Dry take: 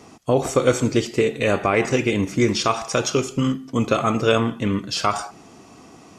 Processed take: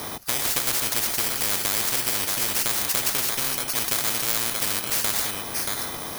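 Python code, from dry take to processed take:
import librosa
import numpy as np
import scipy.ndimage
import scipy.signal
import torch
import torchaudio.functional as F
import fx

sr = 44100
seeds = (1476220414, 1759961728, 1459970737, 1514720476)

y = fx.bit_reversed(x, sr, seeds[0], block=16)
y = y + 10.0 ** (-16.5 / 20.0) * np.pad(y, (int(630 * sr / 1000.0), 0))[:len(y)]
y = fx.spectral_comp(y, sr, ratio=10.0)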